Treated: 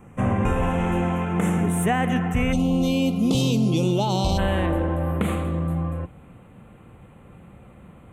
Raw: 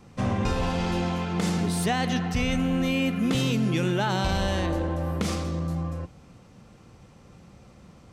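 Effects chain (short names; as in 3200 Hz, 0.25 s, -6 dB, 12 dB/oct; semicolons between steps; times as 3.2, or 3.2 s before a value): Butterworth band-stop 4600 Hz, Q 0.85, from 2.52 s 1700 Hz, from 4.37 s 5300 Hz; gain +4 dB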